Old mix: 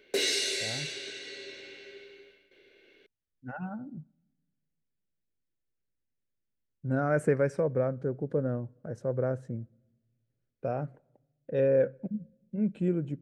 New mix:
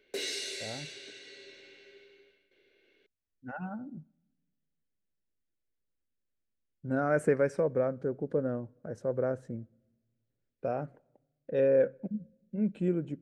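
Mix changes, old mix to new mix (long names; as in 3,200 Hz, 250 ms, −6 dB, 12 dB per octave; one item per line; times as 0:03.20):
speech: add parametric band 130 Hz −7 dB 0.58 octaves
background −7.5 dB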